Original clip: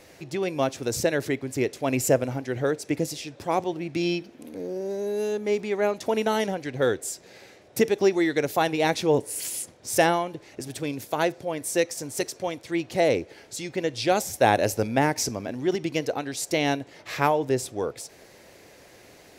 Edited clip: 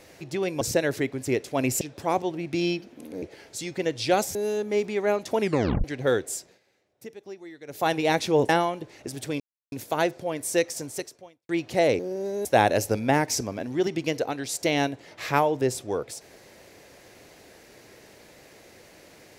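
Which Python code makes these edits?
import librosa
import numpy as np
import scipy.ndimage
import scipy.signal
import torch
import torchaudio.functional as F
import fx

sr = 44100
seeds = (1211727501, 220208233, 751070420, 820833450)

y = fx.edit(x, sr, fx.cut(start_s=0.61, length_s=0.29),
    fx.cut(start_s=2.1, length_s=1.13),
    fx.swap(start_s=4.64, length_s=0.46, other_s=13.2, other_length_s=1.13),
    fx.tape_stop(start_s=6.16, length_s=0.43),
    fx.fade_down_up(start_s=7.11, length_s=1.54, db=-20.0, fade_s=0.24),
    fx.cut(start_s=9.24, length_s=0.78),
    fx.insert_silence(at_s=10.93, length_s=0.32),
    fx.fade_out_span(start_s=12.03, length_s=0.67, curve='qua'), tone=tone)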